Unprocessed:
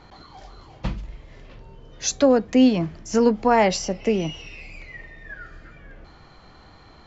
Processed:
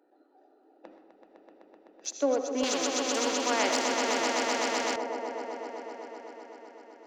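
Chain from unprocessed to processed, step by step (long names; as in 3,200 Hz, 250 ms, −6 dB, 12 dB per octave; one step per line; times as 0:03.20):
adaptive Wiener filter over 41 samples
elliptic high-pass filter 290 Hz, stop band 50 dB
echo that builds up and dies away 127 ms, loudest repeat 5, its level −8 dB
comb and all-pass reverb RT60 0.8 s, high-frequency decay 0.65×, pre-delay 40 ms, DRR 7 dB
0:02.63–0:04.96: every bin compressed towards the loudest bin 2 to 1
level −8.5 dB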